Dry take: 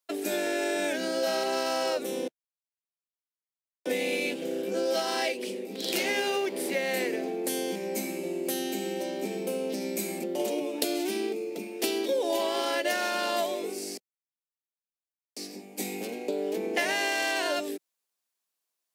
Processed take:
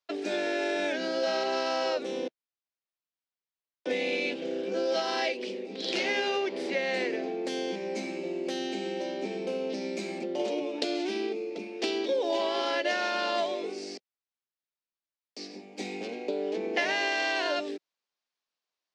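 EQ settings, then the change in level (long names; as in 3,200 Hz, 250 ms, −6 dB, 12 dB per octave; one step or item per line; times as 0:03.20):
low-pass filter 5,400 Hz 24 dB per octave
parametric band 81 Hz −6.5 dB 2.3 octaves
0.0 dB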